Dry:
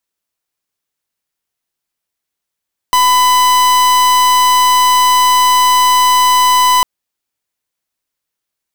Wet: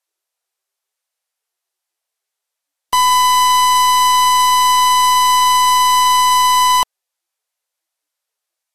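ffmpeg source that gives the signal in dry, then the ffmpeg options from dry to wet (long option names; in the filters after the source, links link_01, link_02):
-f lavfi -i "aevalsrc='0.335*(2*lt(mod(1000*t,1),0.44)-1)':duration=3.9:sample_rate=44100"
-af "equalizer=frequency=740:width=2.6:gain=2.5,asoftclip=type=tanh:threshold=-9dB" -ar 48000 -c:a libvorbis -b:a 32k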